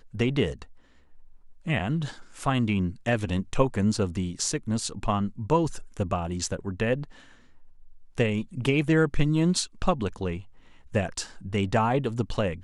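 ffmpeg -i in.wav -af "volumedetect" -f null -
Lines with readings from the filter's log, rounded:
mean_volume: -27.2 dB
max_volume: -7.9 dB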